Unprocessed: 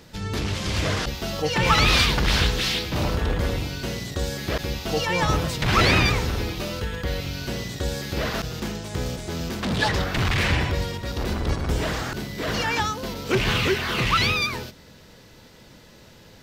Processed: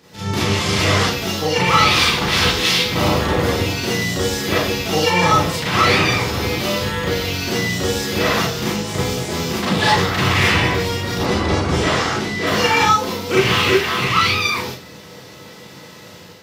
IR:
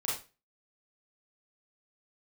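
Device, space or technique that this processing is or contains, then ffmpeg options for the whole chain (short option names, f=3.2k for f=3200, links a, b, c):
far laptop microphone: -filter_complex "[1:a]atrim=start_sample=2205[a];[0:a][a]afir=irnorm=-1:irlink=0,highpass=120,dynaudnorm=f=100:g=5:m=7.5dB,asettb=1/sr,asplit=3[b][c][d];[b]atrim=end=11.254[e];[c]atrim=start=11.25:end=12.47,asetpts=PTS-STARTPTS,afade=t=in:d=0.004:c=qsin,afade=t=out:st=1.216:d=0.004:c=qsin,lowpass=8.2k[f];[d]atrim=start=12.466[g];[e][f]acrossfade=d=0.004:c1=hsin:c2=qsin[h];[h][g]acrossfade=d=0.004:c1=qsin:c2=hsin,volume=-1dB"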